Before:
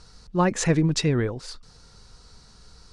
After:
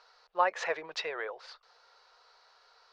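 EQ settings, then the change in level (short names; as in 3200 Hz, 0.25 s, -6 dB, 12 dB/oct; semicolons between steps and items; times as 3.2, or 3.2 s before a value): inverse Chebyshev high-pass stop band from 280 Hz, stop band 40 dB; air absorption 270 m; 0.0 dB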